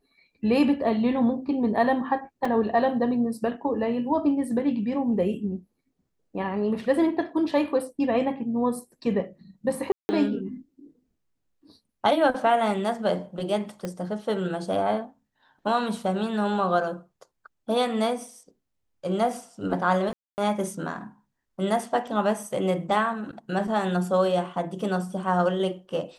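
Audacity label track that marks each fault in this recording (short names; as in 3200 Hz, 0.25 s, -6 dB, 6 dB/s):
2.450000	2.450000	gap 3.7 ms
9.920000	10.090000	gap 0.17 s
13.850000	13.850000	pop -18 dBFS
20.130000	20.380000	gap 0.249 s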